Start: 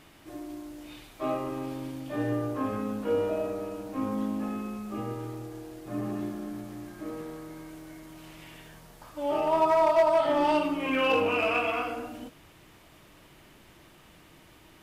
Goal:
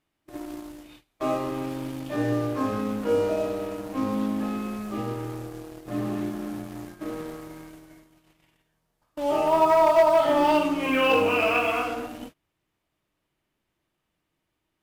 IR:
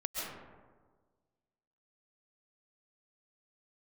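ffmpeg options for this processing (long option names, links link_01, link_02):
-filter_complex "[0:a]agate=range=-24dB:threshold=-44dB:ratio=16:detection=peak,asplit=2[link_01][link_02];[link_02]acrusher=bits=5:mix=0:aa=0.5,volume=-5dB[link_03];[link_01][link_03]amix=inputs=2:normalize=0"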